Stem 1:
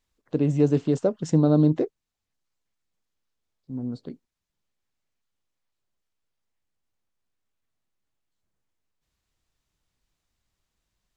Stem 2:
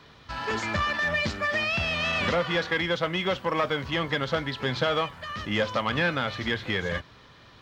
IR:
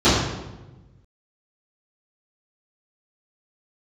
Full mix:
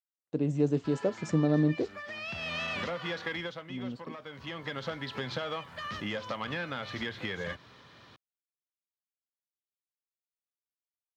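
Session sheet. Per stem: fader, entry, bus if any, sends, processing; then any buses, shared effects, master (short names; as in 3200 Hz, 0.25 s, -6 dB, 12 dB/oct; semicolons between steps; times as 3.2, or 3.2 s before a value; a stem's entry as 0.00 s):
-6.5 dB, 0.00 s, no send, expander -48 dBFS
-2.5 dB, 0.55 s, no send, compressor, threshold -29 dBFS, peak gain reduction 8.5 dB; auto duck -10 dB, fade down 0.30 s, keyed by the first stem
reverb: off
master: HPF 100 Hz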